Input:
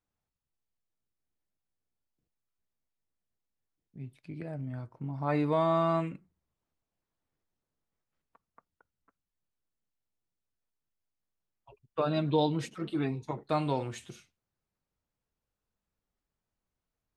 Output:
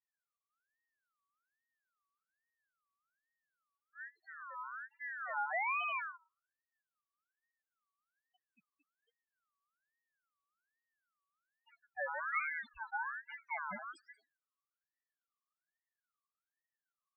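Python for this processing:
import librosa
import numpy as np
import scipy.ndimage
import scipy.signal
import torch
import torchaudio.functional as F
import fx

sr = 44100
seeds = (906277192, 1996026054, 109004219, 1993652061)

y = fx.spec_topn(x, sr, count=2)
y = fx.ring_lfo(y, sr, carrier_hz=1500.0, swing_pct=25, hz=1.2)
y = y * 10.0 ** (-2.5 / 20.0)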